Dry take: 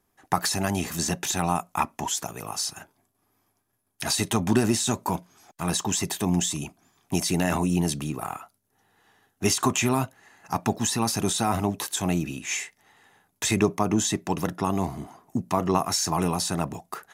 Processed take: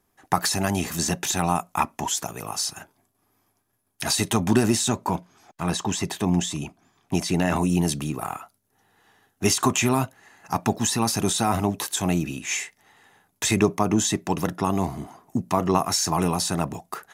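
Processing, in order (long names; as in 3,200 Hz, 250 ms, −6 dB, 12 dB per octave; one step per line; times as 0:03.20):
0:04.88–0:07.56: high-shelf EQ 6,800 Hz −11 dB
level +2 dB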